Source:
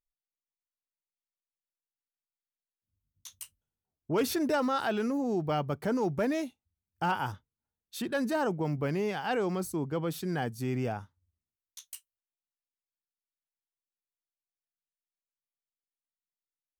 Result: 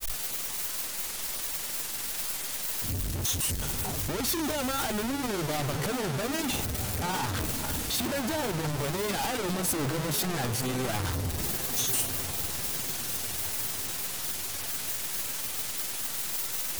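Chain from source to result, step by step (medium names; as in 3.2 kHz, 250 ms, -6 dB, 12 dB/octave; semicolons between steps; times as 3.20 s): one-bit comparator; treble shelf 6.7 kHz +6.5 dB; echo that smears into a reverb 1212 ms, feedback 53%, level -10 dB; granulator 100 ms, grains 20 per s, spray 12 ms, pitch spread up and down by 0 st; trim +5.5 dB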